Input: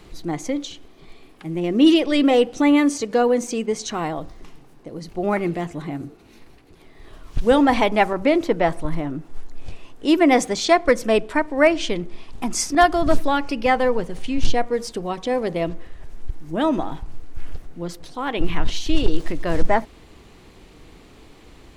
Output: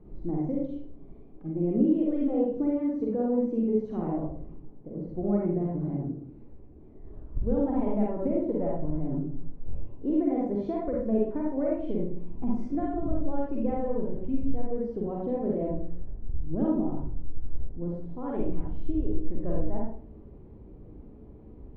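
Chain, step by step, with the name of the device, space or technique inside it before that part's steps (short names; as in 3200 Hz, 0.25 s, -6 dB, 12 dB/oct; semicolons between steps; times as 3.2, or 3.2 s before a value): television next door (compressor 6:1, threshold -20 dBFS, peak gain reduction 12.5 dB; LPF 420 Hz 12 dB/oct; reverb RT60 0.50 s, pre-delay 40 ms, DRR -4 dB); gain -4 dB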